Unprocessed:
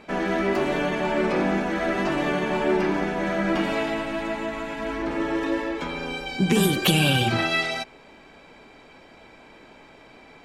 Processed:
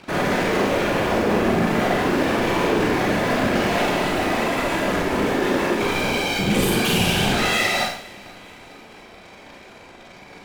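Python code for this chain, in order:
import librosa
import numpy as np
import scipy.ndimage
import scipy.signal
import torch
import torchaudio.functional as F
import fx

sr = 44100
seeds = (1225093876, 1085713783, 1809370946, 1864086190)

p1 = fx.high_shelf(x, sr, hz=4000.0, db=-10.0, at=(0.66, 2.41))
p2 = fx.fuzz(p1, sr, gain_db=39.0, gate_db=-42.0)
p3 = p1 + F.gain(torch.from_numpy(p2), -12.0).numpy()
p4 = fx.whisperise(p3, sr, seeds[0])
p5 = 10.0 ** (-20.0 / 20.0) * np.tanh(p4 / 10.0 ** (-20.0 / 20.0))
p6 = p5 + fx.echo_feedback(p5, sr, ms=457, feedback_pct=55, wet_db=-24.0, dry=0)
y = fx.rev_schroeder(p6, sr, rt60_s=0.57, comb_ms=31, drr_db=-1.5)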